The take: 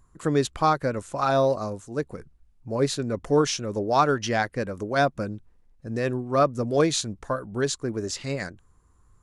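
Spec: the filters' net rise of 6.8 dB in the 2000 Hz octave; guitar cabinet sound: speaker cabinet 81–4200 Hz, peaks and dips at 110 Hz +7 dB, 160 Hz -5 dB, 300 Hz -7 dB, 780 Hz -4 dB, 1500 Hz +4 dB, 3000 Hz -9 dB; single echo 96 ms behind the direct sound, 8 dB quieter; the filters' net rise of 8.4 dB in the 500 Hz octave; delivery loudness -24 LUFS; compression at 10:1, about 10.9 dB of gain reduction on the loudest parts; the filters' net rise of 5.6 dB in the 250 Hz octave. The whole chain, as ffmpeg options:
-af "equalizer=f=250:t=o:g=9,equalizer=f=500:t=o:g=8.5,equalizer=f=2k:t=o:g=5.5,acompressor=threshold=-18dB:ratio=10,highpass=81,equalizer=f=110:t=q:w=4:g=7,equalizer=f=160:t=q:w=4:g=-5,equalizer=f=300:t=q:w=4:g=-7,equalizer=f=780:t=q:w=4:g=-4,equalizer=f=1.5k:t=q:w=4:g=4,equalizer=f=3k:t=q:w=4:g=-9,lowpass=f=4.2k:w=0.5412,lowpass=f=4.2k:w=1.3066,aecho=1:1:96:0.398,volume=1dB"

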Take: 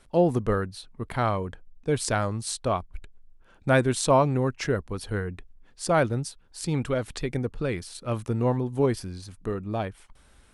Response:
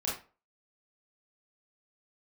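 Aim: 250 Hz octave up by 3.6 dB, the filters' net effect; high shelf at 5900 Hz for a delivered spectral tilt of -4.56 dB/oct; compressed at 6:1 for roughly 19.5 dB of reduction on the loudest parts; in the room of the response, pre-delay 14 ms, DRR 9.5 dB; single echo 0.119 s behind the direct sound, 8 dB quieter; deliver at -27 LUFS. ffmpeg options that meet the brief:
-filter_complex "[0:a]equalizer=f=250:t=o:g=4.5,highshelf=f=5.9k:g=9,acompressor=threshold=-36dB:ratio=6,aecho=1:1:119:0.398,asplit=2[a][b];[1:a]atrim=start_sample=2205,adelay=14[c];[b][c]afir=irnorm=-1:irlink=0,volume=-15dB[d];[a][d]amix=inputs=2:normalize=0,volume=11.5dB"

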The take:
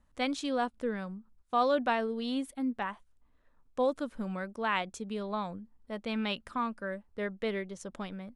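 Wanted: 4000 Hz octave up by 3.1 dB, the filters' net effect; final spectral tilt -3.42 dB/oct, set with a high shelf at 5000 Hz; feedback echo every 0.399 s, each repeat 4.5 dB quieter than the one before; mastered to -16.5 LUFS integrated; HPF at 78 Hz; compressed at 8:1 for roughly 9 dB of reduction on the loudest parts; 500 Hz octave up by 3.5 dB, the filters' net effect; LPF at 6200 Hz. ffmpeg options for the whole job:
-af "highpass=78,lowpass=6.2k,equalizer=f=500:t=o:g=4,equalizer=f=4k:t=o:g=8,highshelf=f=5k:g=-8.5,acompressor=threshold=-30dB:ratio=8,aecho=1:1:399|798|1197|1596|1995|2394|2793|3192|3591:0.596|0.357|0.214|0.129|0.0772|0.0463|0.0278|0.0167|0.01,volume=18.5dB"

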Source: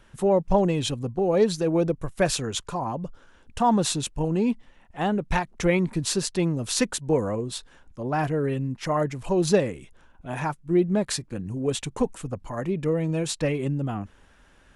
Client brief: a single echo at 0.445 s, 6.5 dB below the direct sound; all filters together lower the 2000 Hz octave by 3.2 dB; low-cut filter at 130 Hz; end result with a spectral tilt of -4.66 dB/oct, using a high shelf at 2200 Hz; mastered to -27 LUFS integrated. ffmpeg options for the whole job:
-af "highpass=130,equalizer=f=2k:t=o:g=-6,highshelf=f=2.2k:g=3.5,aecho=1:1:445:0.473,volume=-1.5dB"

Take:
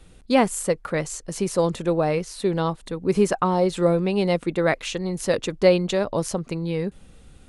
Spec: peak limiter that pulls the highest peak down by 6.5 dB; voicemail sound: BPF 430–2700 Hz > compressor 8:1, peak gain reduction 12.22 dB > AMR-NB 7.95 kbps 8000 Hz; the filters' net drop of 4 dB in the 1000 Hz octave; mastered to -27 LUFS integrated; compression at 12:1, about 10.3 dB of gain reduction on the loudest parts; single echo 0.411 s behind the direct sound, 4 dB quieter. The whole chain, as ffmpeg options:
-af "equalizer=f=1k:t=o:g=-5,acompressor=threshold=-23dB:ratio=12,alimiter=limit=-20dB:level=0:latency=1,highpass=430,lowpass=2.7k,aecho=1:1:411:0.631,acompressor=threshold=-38dB:ratio=8,volume=16.5dB" -ar 8000 -c:a libopencore_amrnb -b:a 7950

